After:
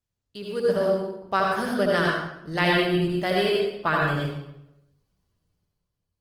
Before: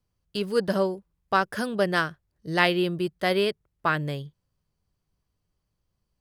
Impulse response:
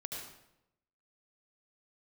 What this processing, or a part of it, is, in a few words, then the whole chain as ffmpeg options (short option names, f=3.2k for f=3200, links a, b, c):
speakerphone in a meeting room: -filter_complex "[1:a]atrim=start_sample=2205[a];[0:a][a]afir=irnorm=-1:irlink=0,dynaudnorm=f=110:g=13:m=11dB,volume=-6dB" -ar 48000 -c:a libopus -b:a 20k